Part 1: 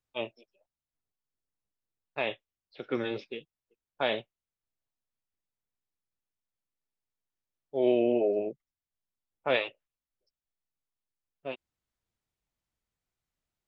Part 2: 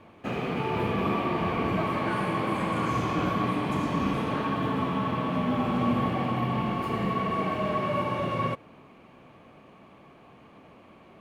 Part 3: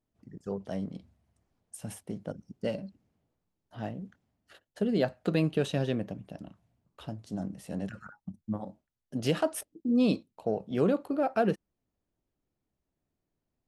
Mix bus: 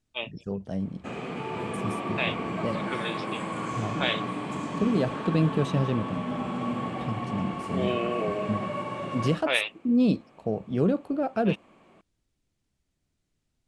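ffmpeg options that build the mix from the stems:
ffmpeg -i stem1.wav -i stem2.wav -i stem3.wav -filter_complex "[0:a]tiltshelf=frequency=840:gain=-8,volume=-0.5dB[link_01];[1:a]highpass=120,equalizer=frequency=7800:width_type=o:width=0.39:gain=11,adelay=800,volume=-4.5dB[link_02];[2:a]lowshelf=frequency=240:gain=11,volume=-2dB[link_03];[link_01][link_02][link_03]amix=inputs=3:normalize=0,lowpass=frequency=10000:width=0.5412,lowpass=frequency=10000:width=1.3066" out.wav

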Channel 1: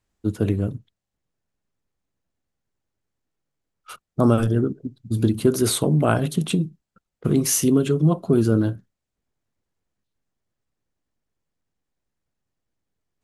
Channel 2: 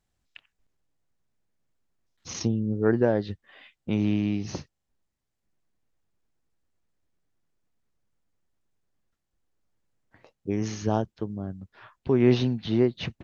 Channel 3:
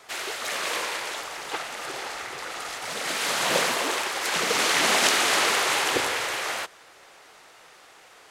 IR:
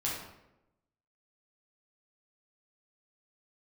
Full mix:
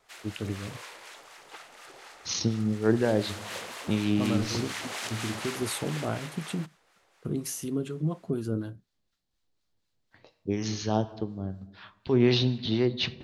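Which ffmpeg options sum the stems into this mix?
-filter_complex "[0:a]volume=-10.5dB[link_01];[1:a]equalizer=frequency=4100:width_type=o:width=1:gain=12,volume=-1dB,asplit=2[link_02][link_03];[link_03]volume=-15.5dB[link_04];[2:a]volume=-13dB[link_05];[3:a]atrim=start_sample=2205[link_06];[link_04][link_06]afir=irnorm=-1:irlink=0[link_07];[link_01][link_02][link_05][link_07]amix=inputs=4:normalize=0,acrossover=split=850[link_08][link_09];[link_08]aeval=exprs='val(0)*(1-0.5/2+0.5/2*cos(2*PI*4.1*n/s))':channel_layout=same[link_10];[link_09]aeval=exprs='val(0)*(1-0.5/2-0.5/2*cos(2*PI*4.1*n/s))':channel_layout=same[link_11];[link_10][link_11]amix=inputs=2:normalize=0"

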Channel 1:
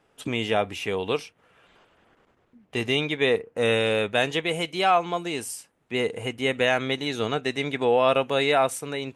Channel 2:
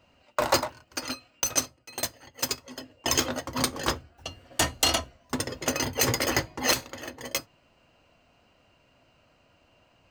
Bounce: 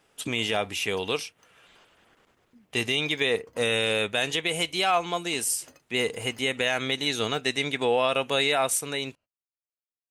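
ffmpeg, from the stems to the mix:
ffmpeg -i stem1.wav -i stem2.wav -filter_complex "[0:a]highshelf=frequency=2500:gain=11.5,volume=-2.5dB,asplit=2[link_01][link_02];[1:a]alimiter=limit=-19dB:level=0:latency=1:release=489,volume=-19.5dB[link_03];[link_02]apad=whole_len=445767[link_04];[link_03][link_04]sidechaingate=range=-33dB:threshold=-53dB:ratio=16:detection=peak[link_05];[link_01][link_05]amix=inputs=2:normalize=0,alimiter=limit=-12.5dB:level=0:latency=1:release=76" out.wav

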